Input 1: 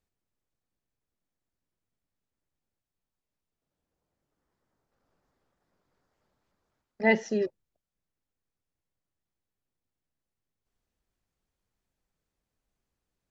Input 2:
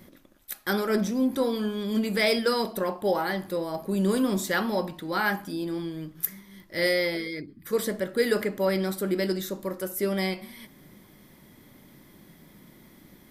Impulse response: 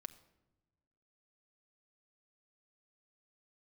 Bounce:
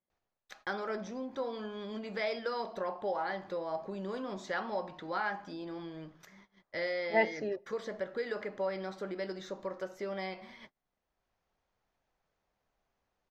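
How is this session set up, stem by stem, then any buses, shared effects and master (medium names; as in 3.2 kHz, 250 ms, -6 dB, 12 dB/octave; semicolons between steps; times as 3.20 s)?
-2.0 dB, 0.10 s, send -19.5 dB, auto duck -12 dB, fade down 0.25 s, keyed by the second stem
-9.5 dB, 0.00 s, no send, gate -45 dBFS, range -36 dB; compression 2.5:1, threshold -33 dBFS, peak gain reduction 10 dB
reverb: on, pre-delay 5 ms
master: FFT filter 290 Hz 0 dB, 700 Hz +12 dB, 6.5 kHz 0 dB, 10 kHz -28 dB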